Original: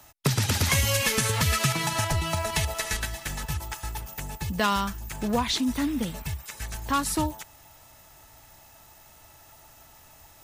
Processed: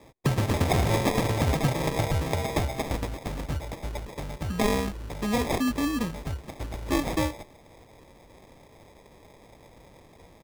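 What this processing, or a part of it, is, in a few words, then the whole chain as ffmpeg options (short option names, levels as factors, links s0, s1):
crushed at another speed: -af "asetrate=35280,aresample=44100,acrusher=samples=38:mix=1:aa=0.000001,asetrate=55125,aresample=44100"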